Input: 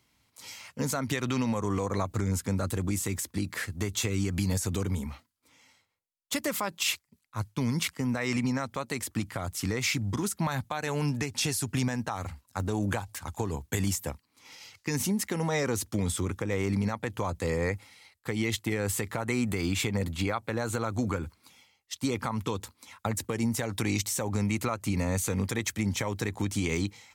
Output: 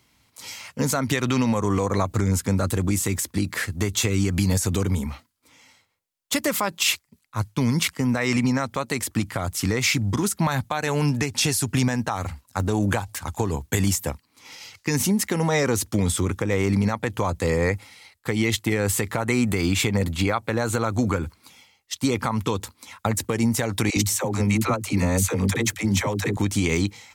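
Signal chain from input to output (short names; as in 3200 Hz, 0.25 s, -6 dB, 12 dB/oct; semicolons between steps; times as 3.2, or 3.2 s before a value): 23.9–26.37 dispersion lows, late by 68 ms, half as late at 410 Hz; gain +7 dB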